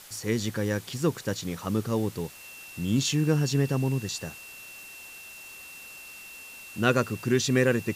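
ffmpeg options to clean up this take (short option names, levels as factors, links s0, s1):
-af "adeclick=t=4,bandreject=f=2700:w=30,afwtdn=0.0045"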